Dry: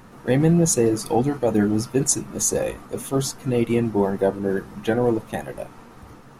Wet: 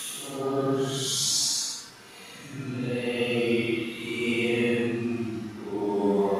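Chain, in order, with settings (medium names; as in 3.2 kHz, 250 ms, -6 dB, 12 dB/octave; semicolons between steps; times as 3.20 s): Paulstretch 6.5×, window 0.10 s, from 3.06 s; frequency weighting D; trim -6 dB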